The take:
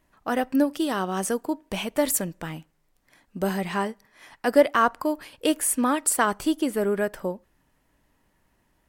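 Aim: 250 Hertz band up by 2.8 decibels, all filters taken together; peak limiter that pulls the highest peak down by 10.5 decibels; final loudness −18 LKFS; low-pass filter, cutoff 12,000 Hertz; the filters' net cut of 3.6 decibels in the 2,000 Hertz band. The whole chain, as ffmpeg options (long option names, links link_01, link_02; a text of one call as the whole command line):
ffmpeg -i in.wav -af "lowpass=12000,equalizer=frequency=250:width_type=o:gain=3.5,equalizer=frequency=2000:width_type=o:gain=-5,volume=8.5dB,alimiter=limit=-7dB:level=0:latency=1" out.wav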